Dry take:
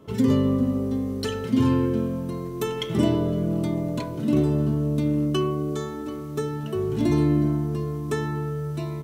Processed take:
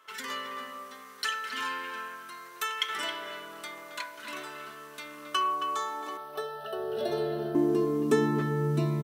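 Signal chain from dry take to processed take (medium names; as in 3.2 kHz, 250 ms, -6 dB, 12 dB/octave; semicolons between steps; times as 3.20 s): high-pass sweep 1.5 kHz -> 180 Hz, 5.00–8.78 s; 6.17–7.55 s: static phaser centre 1.5 kHz, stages 8; speakerphone echo 270 ms, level -7 dB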